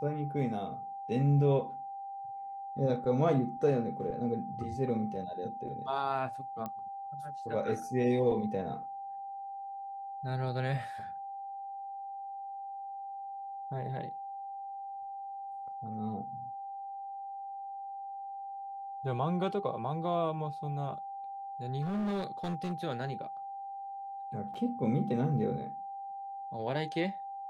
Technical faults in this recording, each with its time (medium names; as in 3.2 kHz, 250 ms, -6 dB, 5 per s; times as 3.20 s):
whine 790 Hz -39 dBFS
6.66 s: pop -25 dBFS
21.82–22.72 s: clipped -30 dBFS
24.54–24.55 s: dropout 5.3 ms